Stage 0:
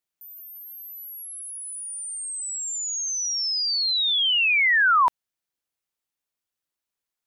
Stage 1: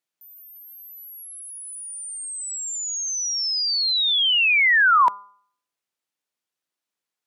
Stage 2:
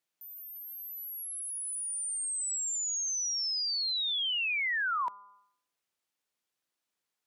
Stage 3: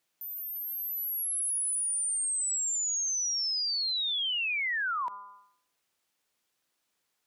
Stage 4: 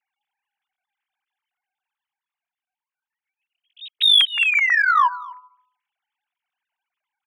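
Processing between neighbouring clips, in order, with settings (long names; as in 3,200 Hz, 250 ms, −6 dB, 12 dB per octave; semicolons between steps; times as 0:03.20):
high-pass filter 150 Hz; high-shelf EQ 11,000 Hz −8.5 dB; hum removal 201.4 Hz, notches 7; level +2.5 dB
downward compressor 5 to 1, threshold −32 dBFS, peak gain reduction 16 dB
brickwall limiter −35 dBFS, peak gain reduction 9.5 dB; level +7.5 dB
three sine waves on the formant tracks; in parallel at −4 dB: soft clipping −22.5 dBFS, distortion −12 dB; on the sum: single-tap delay 247 ms −21 dB; level +5 dB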